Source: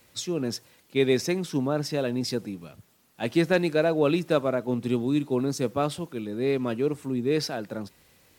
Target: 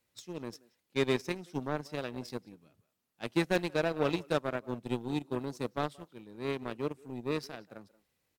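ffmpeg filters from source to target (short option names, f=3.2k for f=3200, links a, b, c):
-filter_complex "[0:a]asplit=2[a][b];[b]adelay=180,highpass=300,lowpass=3.4k,asoftclip=type=hard:threshold=-18dB,volume=-13dB[c];[a][c]amix=inputs=2:normalize=0,aeval=exprs='0.355*(cos(1*acos(clip(val(0)/0.355,-1,1)))-cos(1*PI/2))+0.0398*(cos(7*acos(clip(val(0)/0.355,-1,1)))-cos(7*PI/2))':c=same,volume=-6.5dB"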